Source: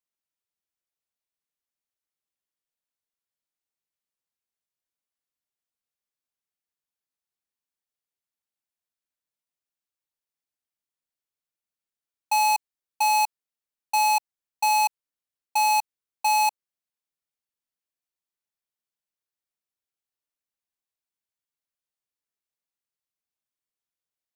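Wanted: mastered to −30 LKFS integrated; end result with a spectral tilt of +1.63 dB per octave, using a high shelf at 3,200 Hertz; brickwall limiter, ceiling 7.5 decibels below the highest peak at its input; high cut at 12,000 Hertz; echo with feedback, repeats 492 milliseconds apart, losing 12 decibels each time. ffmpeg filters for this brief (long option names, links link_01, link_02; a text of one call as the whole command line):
ffmpeg -i in.wav -af "lowpass=12000,highshelf=frequency=3200:gain=4.5,alimiter=limit=-22dB:level=0:latency=1,aecho=1:1:492|984|1476:0.251|0.0628|0.0157,volume=1dB" out.wav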